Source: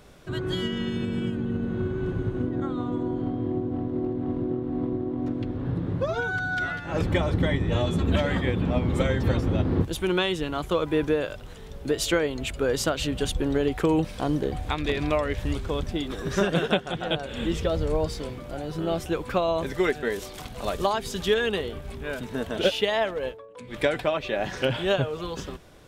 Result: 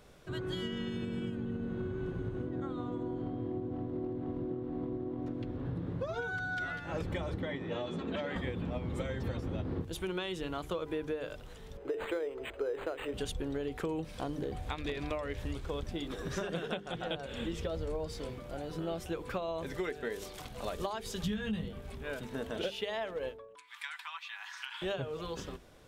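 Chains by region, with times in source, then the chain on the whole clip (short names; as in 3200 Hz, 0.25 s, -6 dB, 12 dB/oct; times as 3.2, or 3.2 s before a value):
7.4–8.36 HPF 210 Hz + air absorption 100 m
11.77–13.14 resonant low shelf 280 Hz -11 dB, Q 3 + decimation joined by straight lines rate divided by 8×
21.23–21.68 resonant low shelf 270 Hz +11.5 dB, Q 3 + doubler 19 ms -4 dB
23.55–24.82 steep high-pass 900 Hz 72 dB/oct + compressor 1.5:1, threshold -38 dBFS
whole clip: bell 470 Hz +2.5 dB 0.25 oct; notches 50/100/150/200/250/300/350/400/450 Hz; compressor, threshold -26 dBFS; gain -6.5 dB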